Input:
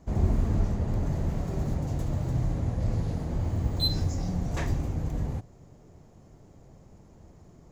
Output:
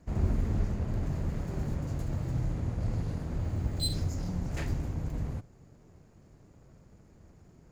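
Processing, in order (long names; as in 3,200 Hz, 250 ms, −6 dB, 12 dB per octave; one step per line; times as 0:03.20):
lower of the sound and its delayed copy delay 0.43 ms
level −3.5 dB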